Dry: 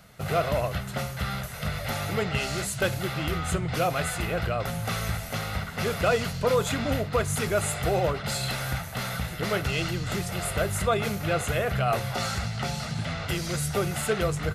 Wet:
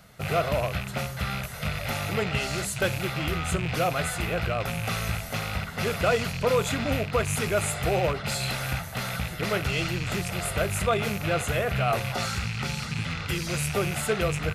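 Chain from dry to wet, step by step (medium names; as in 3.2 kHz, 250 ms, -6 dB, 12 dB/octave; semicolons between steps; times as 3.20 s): rattle on loud lows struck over -31 dBFS, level -23 dBFS; 12.25–13.47 s: peaking EQ 660 Hz -14 dB 0.33 oct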